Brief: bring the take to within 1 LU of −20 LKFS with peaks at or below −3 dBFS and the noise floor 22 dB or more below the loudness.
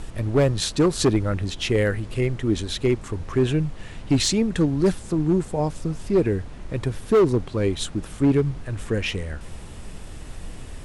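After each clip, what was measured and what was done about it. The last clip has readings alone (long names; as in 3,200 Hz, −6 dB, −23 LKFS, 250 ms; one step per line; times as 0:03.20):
share of clipped samples 1.1%; peaks flattened at −12.5 dBFS; background noise floor −39 dBFS; target noise floor −45 dBFS; integrated loudness −23.0 LKFS; sample peak −12.5 dBFS; target loudness −20.0 LKFS
→ clipped peaks rebuilt −12.5 dBFS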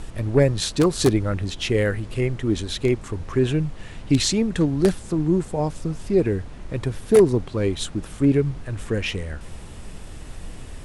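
share of clipped samples 0.0%; background noise floor −39 dBFS; target noise floor −45 dBFS
→ noise reduction from a noise print 6 dB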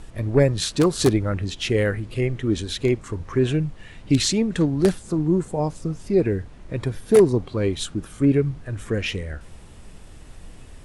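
background noise floor −44 dBFS; target noise floor −45 dBFS
→ noise reduction from a noise print 6 dB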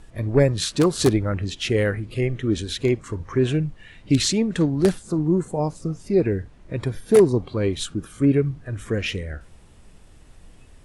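background noise floor −49 dBFS; integrated loudness −22.5 LKFS; sample peak −4.0 dBFS; target loudness −20.0 LKFS
→ level +2.5 dB
brickwall limiter −3 dBFS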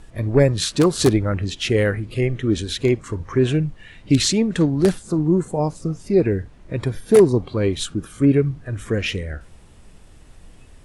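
integrated loudness −20.0 LKFS; sample peak −3.0 dBFS; background noise floor −47 dBFS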